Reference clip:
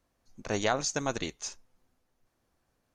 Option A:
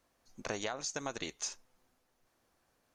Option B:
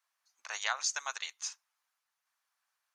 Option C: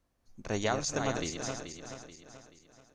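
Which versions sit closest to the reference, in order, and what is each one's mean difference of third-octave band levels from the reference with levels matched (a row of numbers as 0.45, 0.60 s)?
A, C, B; 4.0, 5.5, 12.5 dB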